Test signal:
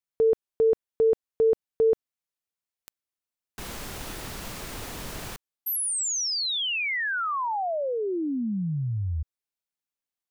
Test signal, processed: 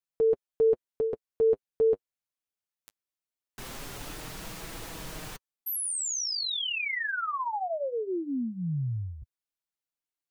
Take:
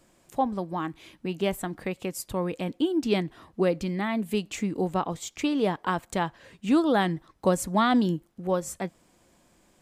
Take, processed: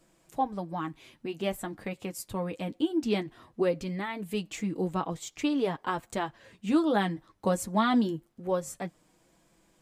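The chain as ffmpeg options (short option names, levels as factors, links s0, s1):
-af "flanger=delay=6.1:depth=3.7:regen=-23:speed=0.21:shape=sinusoidal"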